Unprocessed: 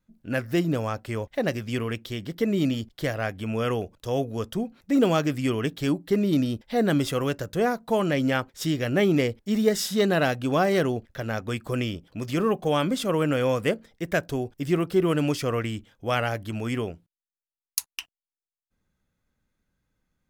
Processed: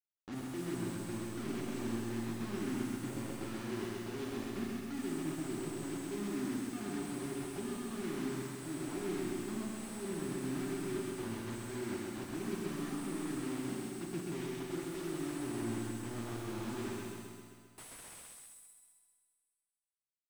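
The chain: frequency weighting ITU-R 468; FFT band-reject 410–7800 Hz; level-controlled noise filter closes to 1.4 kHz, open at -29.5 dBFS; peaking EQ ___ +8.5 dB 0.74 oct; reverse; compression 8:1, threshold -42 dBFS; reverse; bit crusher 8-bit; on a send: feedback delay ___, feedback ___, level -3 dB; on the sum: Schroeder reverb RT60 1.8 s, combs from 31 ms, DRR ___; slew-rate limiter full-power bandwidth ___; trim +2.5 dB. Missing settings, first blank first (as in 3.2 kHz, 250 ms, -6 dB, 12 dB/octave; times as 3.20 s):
6.2 kHz, 131 ms, 58%, 1 dB, 16 Hz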